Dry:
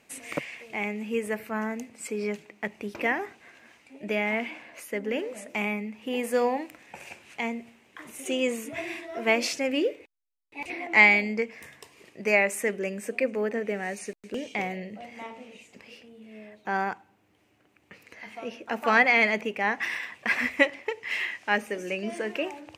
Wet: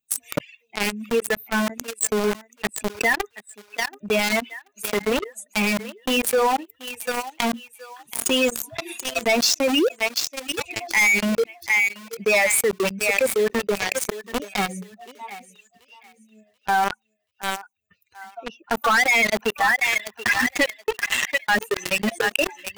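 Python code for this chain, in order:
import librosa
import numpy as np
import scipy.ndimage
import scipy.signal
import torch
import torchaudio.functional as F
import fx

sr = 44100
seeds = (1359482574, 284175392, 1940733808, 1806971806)

p1 = fx.bin_expand(x, sr, power=2.0)
p2 = fx.dereverb_blind(p1, sr, rt60_s=0.85)
p3 = fx.quant_dither(p2, sr, seeds[0], bits=6, dither='none')
p4 = p2 + (p3 * librosa.db_to_amplitude(-9.5))
p5 = fx.low_shelf(p4, sr, hz=280.0, db=-11.5)
p6 = fx.echo_thinned(p5, sr, ms=732, feedback_pct=28, hz=900.0, wet_db=-12.5)
p7 = fx.leveller(p6, sr, passes=5)
p8 = fx.env_flatten(p7, sr, amount_pct=70)
y = p8 * librosa.db_to_amplitude(-9.5)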